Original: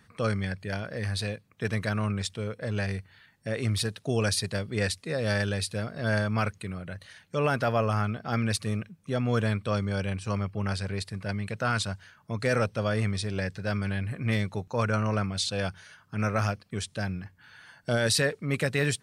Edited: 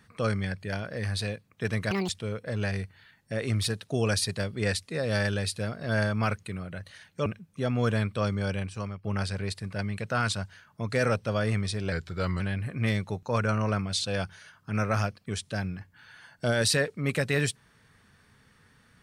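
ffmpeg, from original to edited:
-filter_complex "[0:a]asplit=7[a][b][c][d][e][f][g];[a]atrim=end=1.914[h];[b]atrim=start=1.91:end=2.24,asetpts=PTS-STARTPTS,asetrate=81144,aresample=44100,atrim=end_sample=7909,asetpts=PTS-STARTPTS[i];[c]atrim=start=2.236:end=7.412[j];[d]atrim=start=8.758:end=10.54,asetpts=PTS-STARTPTS,afade=t=out:st=1.262:d=0.52:silence=0.266073[k];[e]atrim=start=10.54:end=13.424,asetpts=PTS-STARTPTS,afade=t=in:d=0.004:c=hsin:silence=0.266073[l];[f]atrim=start=13.42:end=13.85,asetpts=PTS-STARTPTS,asetrate=39249,aresample=44100[m];[g]atrim=start=13.846[n];[h][i]acrossfade=d=0.004:c1=hsin:c2=hsin[o];[o][j]acrossfade=d=0.004:c1=hsin:c2=hsin[p];[k][l]concat=n=2:v=0:a=1[q];[p][q]acrossfade=d=0.004:c1=hsin:c2=hsin[r];[r][m]acrossfade=d=0.004:c1=hsin:c2=hsin[s];[s][n]acrossfade=d=0.004:c1=hsin:c2=hsin"

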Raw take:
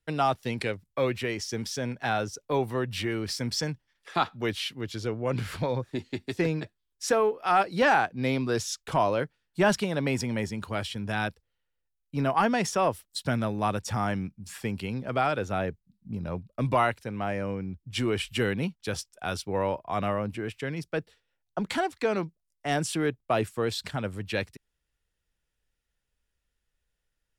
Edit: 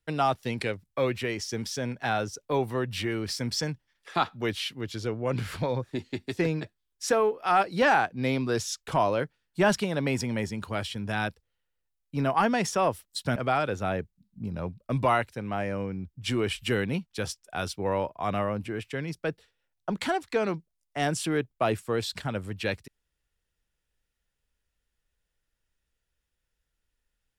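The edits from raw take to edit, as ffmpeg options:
-filter_complex "[0:a]asplit=2[a][b];[a]atrim=end=13.362[c];[b]atrim=start=15.048[d];[c][d]acrossfade=d=0.004:c1=hsin:c2=hsin"

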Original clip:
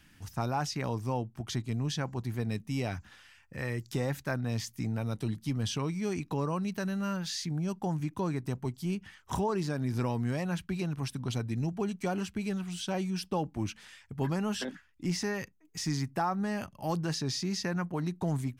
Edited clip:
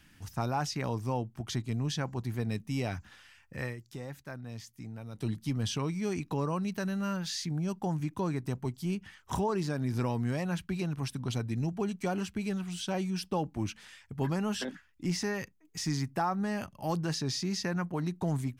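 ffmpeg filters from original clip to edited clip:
-filter_complex "[0:a]asplit=3[a][b][c];[a]atrim=end=3.76,asetpts=PTS-STARTPTS,afade=t=out:st=3.64:d=0.12:silence=0.316228[d];[b]atrim=start=3.76:end=5.13,asetpts=PTS-STARTPTS,volume=-10dB[e];[c]atrim=start=5.13,asetpts=PTS-STARTPTS,afade=t=in:d=0.12:silence=0.316228[f];[d][e][f]concat=n=3:v=0:a=1"

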